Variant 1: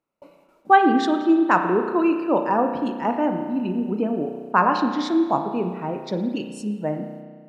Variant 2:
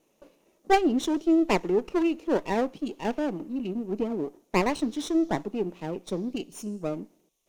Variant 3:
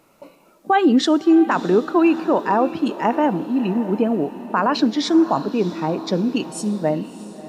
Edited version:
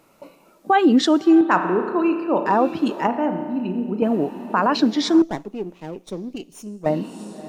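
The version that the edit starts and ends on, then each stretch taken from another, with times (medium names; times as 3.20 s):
3
1.41–2.46 s: from 1
3.07–4.02 s: from 1
5.22–6.86 s: from 2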